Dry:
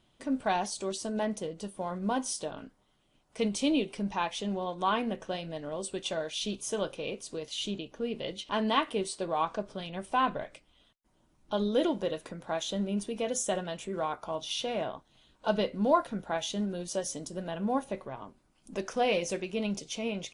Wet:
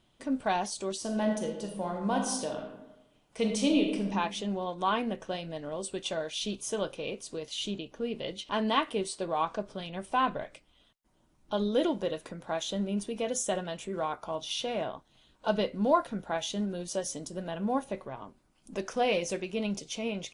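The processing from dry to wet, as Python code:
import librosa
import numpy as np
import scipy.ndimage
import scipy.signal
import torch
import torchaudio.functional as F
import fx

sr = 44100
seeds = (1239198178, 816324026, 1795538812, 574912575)

y = fx.reverb_throw(x, sr, start_s=0.99, length_s=3.09, rt60_s=0.98, drr_db=2.5)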